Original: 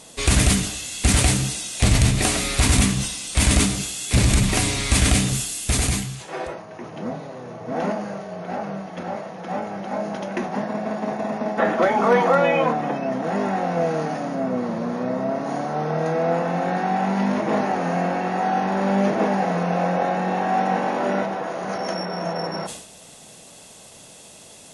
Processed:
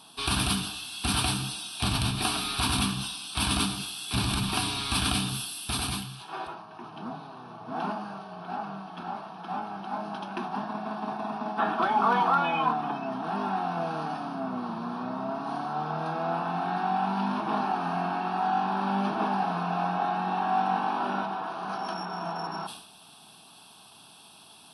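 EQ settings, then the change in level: high-pass 300 Hz 6 dB/octave; peaking EQ 780 Hz +3.5 dB 1.1 oct; static phaser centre 2 kHz, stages 6; -2.0 dB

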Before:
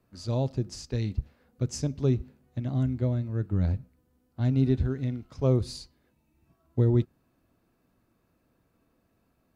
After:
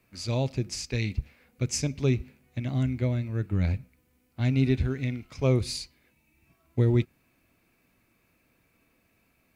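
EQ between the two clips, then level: peaking EQ 2.3 kHz +14.5 dB 0.54 oct; treble shelf 3.7 kHz +9 dB; 0.0 dB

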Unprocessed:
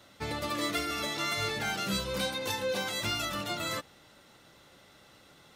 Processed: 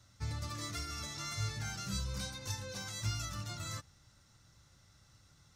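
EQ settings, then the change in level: FFT filter 110 Hz 0 dB, 200 Hz -14 dB, 440 Hz -23 dB, 670 Hz -21 dB, 1.3 kHz -15 dB, 3.2 kHz -20 dB, 5.8 kHz -5 dB, 12 kHz -17 dB; +5.0 dB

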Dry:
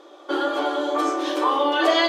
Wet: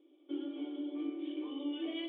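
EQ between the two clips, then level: cascade formant filter i; -5.5 dB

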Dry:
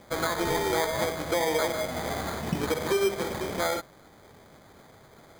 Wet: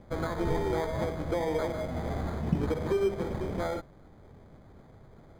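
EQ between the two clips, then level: tilt EQ -3.5 dB/octave; -6.5 dB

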